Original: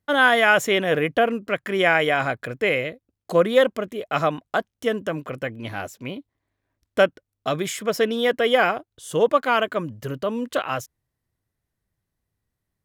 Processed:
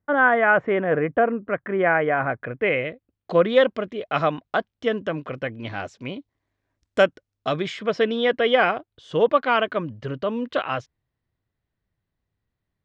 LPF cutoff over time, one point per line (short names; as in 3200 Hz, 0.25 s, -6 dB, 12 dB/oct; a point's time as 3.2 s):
LPF 24 dB/oct
2.15 s 1800 Hz
3.5 s 4700 Hz
5.47 s 4700 Hz
6.99 s 8600 Hz
7.77 s 4300 Hz